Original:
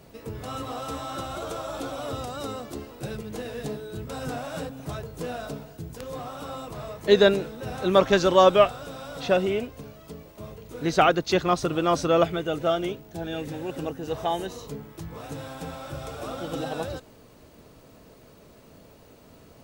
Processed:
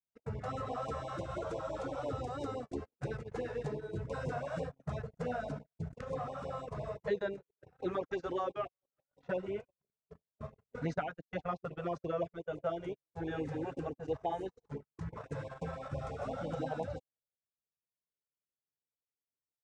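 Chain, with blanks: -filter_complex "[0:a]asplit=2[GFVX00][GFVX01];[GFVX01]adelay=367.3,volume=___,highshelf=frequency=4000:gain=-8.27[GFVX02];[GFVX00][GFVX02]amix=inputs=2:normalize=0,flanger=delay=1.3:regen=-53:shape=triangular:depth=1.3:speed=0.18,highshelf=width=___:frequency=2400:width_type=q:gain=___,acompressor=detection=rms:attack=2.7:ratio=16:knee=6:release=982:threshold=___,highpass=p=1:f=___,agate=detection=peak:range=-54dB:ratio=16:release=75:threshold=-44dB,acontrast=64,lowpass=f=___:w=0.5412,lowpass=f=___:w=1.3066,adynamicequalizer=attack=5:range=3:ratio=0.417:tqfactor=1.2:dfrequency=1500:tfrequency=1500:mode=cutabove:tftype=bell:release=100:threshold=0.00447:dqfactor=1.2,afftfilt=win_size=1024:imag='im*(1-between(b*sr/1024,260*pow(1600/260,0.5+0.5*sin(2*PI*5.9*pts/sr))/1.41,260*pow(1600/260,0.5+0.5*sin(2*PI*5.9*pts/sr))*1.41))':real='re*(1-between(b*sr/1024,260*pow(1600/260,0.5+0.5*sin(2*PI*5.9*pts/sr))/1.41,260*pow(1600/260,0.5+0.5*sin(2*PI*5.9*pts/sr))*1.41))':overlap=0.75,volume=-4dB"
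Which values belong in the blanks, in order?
-21dB, 1.5, -9.5, -28dB, 57, 7700, 7700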